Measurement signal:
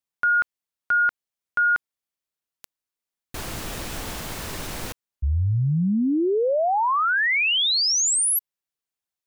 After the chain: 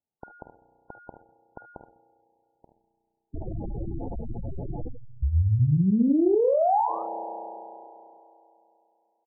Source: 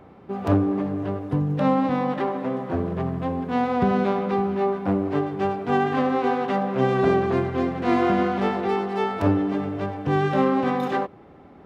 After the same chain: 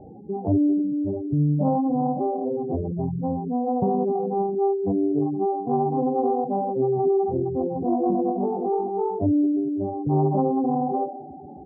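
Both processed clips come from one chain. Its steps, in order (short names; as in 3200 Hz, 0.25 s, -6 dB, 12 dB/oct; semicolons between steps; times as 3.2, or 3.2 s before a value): elliptic low-pass 860 Hz, stop band 50 dB; doubler 48 ms -8.5 dB; on a send: feedback echo 75 ms, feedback 23%, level -9.5 dB; on the sum: spring tank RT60 2.9 s, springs 33 ms, chirp 25 ms, DRR 10 dB; spectral gate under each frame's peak -10 dB strong; in parallel at +2 dB: compressor, threshold -35 dBFS; on the sum: Doppler distortion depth 0.16 ms; gain -2 dB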